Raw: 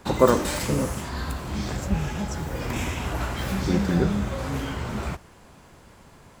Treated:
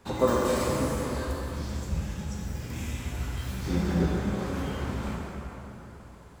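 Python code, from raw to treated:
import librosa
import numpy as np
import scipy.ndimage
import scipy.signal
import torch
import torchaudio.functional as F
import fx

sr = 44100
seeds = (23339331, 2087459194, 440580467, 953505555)

y = fx.peak_eq(x, sr, hz=780.0, db=-10.0, octaves=2.9, at=(1.25, 3.65))
y = fx.rev_plate(y, sr, seeds[0], rt60_s=3.5, hf_ratio=0.6, predelay_ms=0, drr_db=-3.5)
y = y * librosa.db_to_amplitude(-9.0)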